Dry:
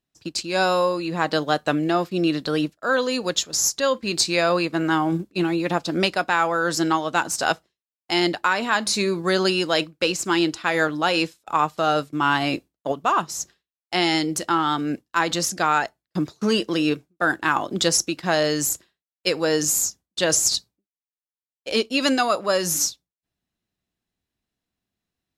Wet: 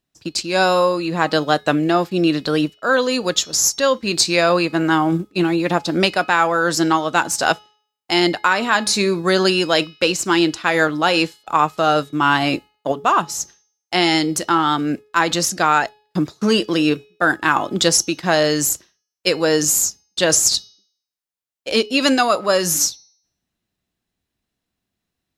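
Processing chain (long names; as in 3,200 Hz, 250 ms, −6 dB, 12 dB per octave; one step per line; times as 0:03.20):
hum removal 422.5 Hz, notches 15
level +4.5 dB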